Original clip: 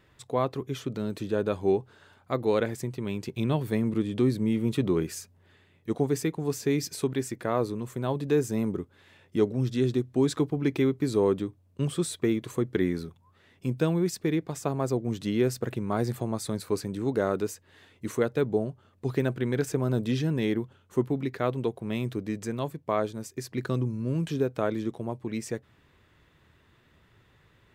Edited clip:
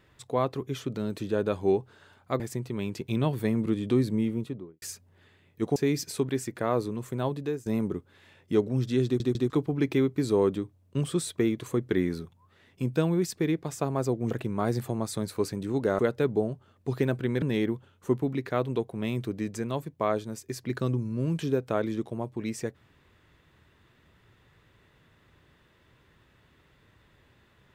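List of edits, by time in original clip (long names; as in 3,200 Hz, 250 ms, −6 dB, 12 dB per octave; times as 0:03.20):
0:02.40–0:02.68: remove
0:04.34–0:05.10: fade out and dull
0:06.04–0:06.60: remove
0:08.09–0:08.50: fade out linear, to −19 dB
0:09.89: stutter in place 0.15 s, 3 plays
0:15.15–0:15.63: remove
0:17.31–0:18.16: remove
0:19.59–0:20.30: remove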